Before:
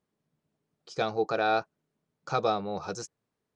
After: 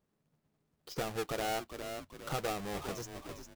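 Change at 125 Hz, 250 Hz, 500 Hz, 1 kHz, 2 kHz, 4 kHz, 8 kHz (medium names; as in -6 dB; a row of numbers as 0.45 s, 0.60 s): -2.0 dB, -5.0 dB, -8.0 dB, -9.5 dB, -7.0 dB, -3.0 dB, no reading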